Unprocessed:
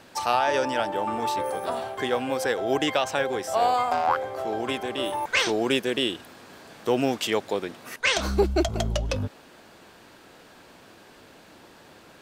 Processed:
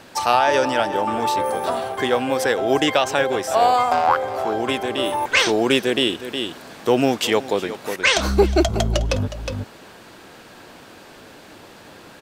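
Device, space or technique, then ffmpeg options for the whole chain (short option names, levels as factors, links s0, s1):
ducked delay: -filter_complex "[0:a]asplit=3[s0][s1][s2];[s1]adelay=363,volume=0.562[s3];[s2]apad=whole_len=554687[s4];[s3][s4]sidechaincompress=threshold=0.0178:ratio=5:attack=7.9:release=291[s5];[s0][s5]amix=inputs=2:normalize=0,volume=2"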